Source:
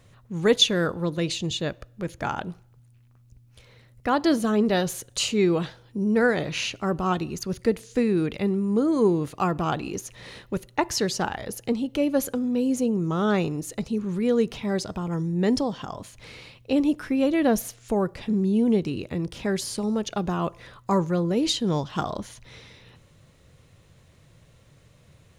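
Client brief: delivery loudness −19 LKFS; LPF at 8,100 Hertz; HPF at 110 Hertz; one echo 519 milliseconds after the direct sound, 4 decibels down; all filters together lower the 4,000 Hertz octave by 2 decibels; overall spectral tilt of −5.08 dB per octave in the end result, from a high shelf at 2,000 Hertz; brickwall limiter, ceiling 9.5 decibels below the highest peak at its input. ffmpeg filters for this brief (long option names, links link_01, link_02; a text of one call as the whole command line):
ffmpeg -i in.wav -af "highpass=110,lowpass=8100,highshelf=frequency=2000:gain=5.5,equalizer=frequency=4000:width_type=o:gain=-7.5,alimiter=limit=-17dB:level=0:latency=1,aecho=1:1:519:0.631,volume=7dB" out.wav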